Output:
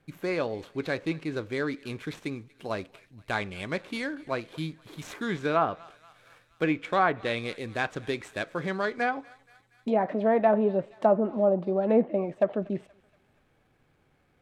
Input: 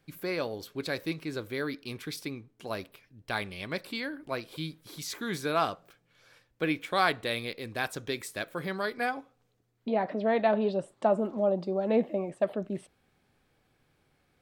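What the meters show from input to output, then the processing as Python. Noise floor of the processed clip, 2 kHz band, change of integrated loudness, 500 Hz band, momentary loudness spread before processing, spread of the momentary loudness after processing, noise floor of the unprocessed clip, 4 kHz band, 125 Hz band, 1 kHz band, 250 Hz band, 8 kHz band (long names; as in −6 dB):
−67 dBFS, +1.5 dB, +3.0 dB, +3.5 dB, 12 LU, 13 LU, −72 dBFS, −3.0 dB, +3.5 dB, +3.0 dB, +3.5 dB, −6.5 dB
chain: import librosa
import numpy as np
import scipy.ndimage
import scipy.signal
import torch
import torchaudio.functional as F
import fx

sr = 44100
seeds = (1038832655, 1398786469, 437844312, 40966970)

y = scipy.signal.medfilt(x, 9)
y = fx.echo_thinned(y, sr, ms=237, feedback_pct=68, hz=940.0, wet_db=-23)
y = fx.env_lowpass_down(y, sr, base_hz=1600.0, full_db=-22.5)
y = y * 10.0 ** (3.5 / 20.0)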